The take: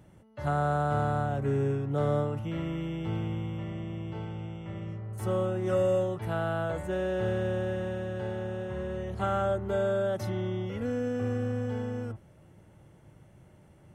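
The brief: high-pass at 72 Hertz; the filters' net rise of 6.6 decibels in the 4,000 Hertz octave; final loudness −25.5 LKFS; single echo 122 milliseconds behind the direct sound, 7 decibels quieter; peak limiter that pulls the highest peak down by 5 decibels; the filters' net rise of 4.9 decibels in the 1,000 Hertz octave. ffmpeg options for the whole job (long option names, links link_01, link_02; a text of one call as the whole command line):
ffmpeg -i in.wav -af "highpass=72,equalizer=frequency=1000:width_type=o:gain=7,equalizer=frequency=4000:width_type=o:gain=8.5,alimiter=limit=-19.5dB:level=0:latency=1,aecho=1:1:122:0.447,volume=4.5dB" out.wav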